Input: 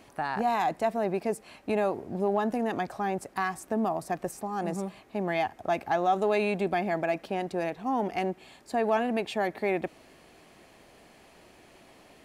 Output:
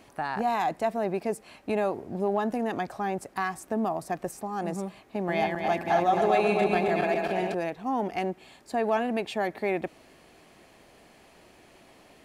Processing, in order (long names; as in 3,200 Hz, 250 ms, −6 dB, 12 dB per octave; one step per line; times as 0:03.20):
0:05.02–0:07.55: feedback delay that plays each chunk backwards 133 ms, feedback 73%, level −3 dB